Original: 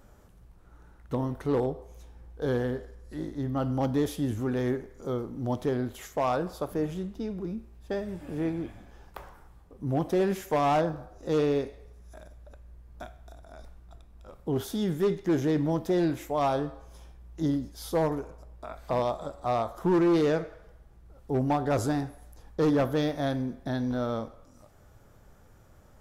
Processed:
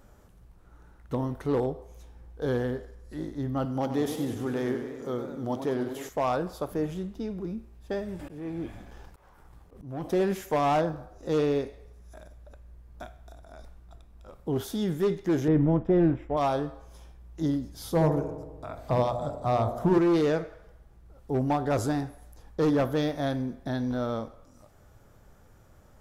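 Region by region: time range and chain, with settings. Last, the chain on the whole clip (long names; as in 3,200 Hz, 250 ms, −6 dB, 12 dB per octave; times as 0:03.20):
0:03.65–0:06.09: high-pass filter 190 Hz 6 dB per octave + feedback echo with a swinging delay time 97 ms, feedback 68%, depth 146 cents, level −9 dB
0:08.19–0:10.04: leveller curve on the samples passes 1 + volume swells 489 ms + background raised ahead of every attack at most 76 dB per second
0:15.48–0:16.37: mu-law and A-law mismatch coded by A + Savitzky-Golay smoothing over 25 samples + spectral tilt −2.5 dB per octave
0:17.69–0:19.98: parametric band 100 Hz +14 dB 1.7 octaves + mains-hum notches 60/120/180/240/300/360/420/480/540 Hz + delay with a band-pass on its return 73 ms, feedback 66%, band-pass 400 Hz, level −7 dB
whole clip: no processing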